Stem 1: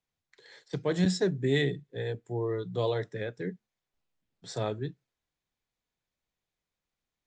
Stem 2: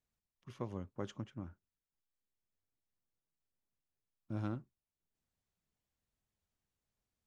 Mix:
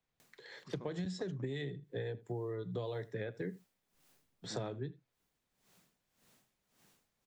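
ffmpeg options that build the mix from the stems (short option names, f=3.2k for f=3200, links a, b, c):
-filter_complex "[0:a]highshelf=f=4.8k:g=-9.5,acrossover=split=140|3000[a][b][c];[b]acompressor=threshold=-28dB:ratio=6[d];[a][d][c]amix=inputs=3:normalize=0,volume=3dB,asplit=2[e][f];[f]volume=-23.5dB[g];[1:a]highpass=f=140:w=0.5412,highpass=f=140:w=1.3066,acompressor=mode=upward:threshold=-48dB:ratio=2.5,aeval=exprs='val(0)*pow(10,-19*(0.5-0.5*cos(2*PI*1.8*n/s))/20)':c=same,adelay=200,volume=0.5dB[h];[g]aecho=0:1:81:1[i];[e][h][i]amix=inputs=3:normalize=0,acompressor=threshold=-36dB:ratio=10"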